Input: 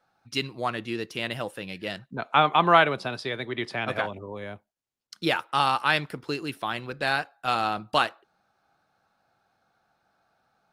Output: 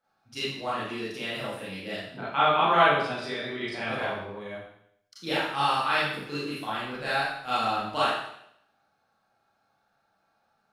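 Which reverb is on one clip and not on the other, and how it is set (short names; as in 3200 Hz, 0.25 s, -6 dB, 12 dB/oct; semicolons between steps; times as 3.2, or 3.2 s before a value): Schroeder reverb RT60 0.73 s, combs from 28 ms, DRR -10 dB; gain -11.5 dB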